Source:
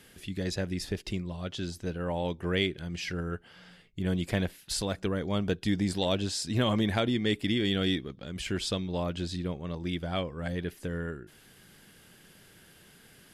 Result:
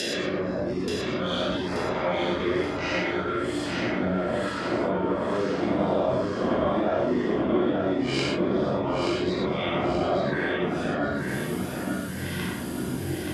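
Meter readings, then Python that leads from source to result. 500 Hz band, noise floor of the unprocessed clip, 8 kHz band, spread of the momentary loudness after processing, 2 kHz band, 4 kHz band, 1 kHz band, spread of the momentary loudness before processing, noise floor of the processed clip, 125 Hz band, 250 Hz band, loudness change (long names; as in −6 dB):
+9.0 dB, −57 dBFS, −0.5 dB, 6 LU, +7.0 dB, +0.5 dB, +10.5 dB, 9 LU, −32 dBFS, +0.5 dB, +5.5 dB, +5.0 dB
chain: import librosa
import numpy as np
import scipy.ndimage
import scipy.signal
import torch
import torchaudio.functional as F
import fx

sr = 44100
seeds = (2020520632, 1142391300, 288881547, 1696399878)

y = fx.spec_swells(x, sr, rise_s=2.76)
y = fx.dereverb_blind(y, sr, rt60_s=1.5)
y = fx.env_lowpass_down(y, sr, base_hz=760.0, full_db=-27.5)
y = scipy.signal.sosfilt(scipy.signal.butter(2, 280.0, 'highpass', fs=sr, output='sos'), y)
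y = fx.dereverb_blind(y, sr, rt60_s=0.74)
y = fx.high_shelf(y, sr, hz=3300.0, db=10.0)
y = fx.over_compress(y, sr, threshold_db=-33.0, ratio=-1.0)
y = fx.echo_pitch(y, sr, ms=124, semitones=-7, count=3, db_per_echo=-6.0)
y = fx.echo_feedback(y, sr, ms=879, feedback_pct=42, wet_db=-5.0)
y = fx.rev_gated(y, sr, seeds[0], gate_ms=140, shape='flat', drr_db=-4.5)
y = F.gain(torch.from_numpy(y), 3.5).numpy()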